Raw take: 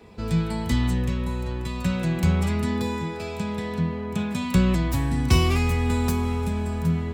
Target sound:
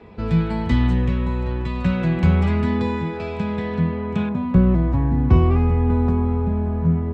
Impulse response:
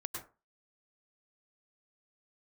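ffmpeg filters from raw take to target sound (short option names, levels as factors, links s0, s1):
-filter_complex "[0:a]asetnsamples=n=441:p=0,asendcmd='4.29 lowpass f 1000',lowpass=2700[s0];[1:a]atrim=start_sample=2205,afade=t=out:st=0.14:d=0.01,atrim=end_sample=6615[s1];[s0][s1]afir=irnorm=-1:irlink=0,volume=2.37"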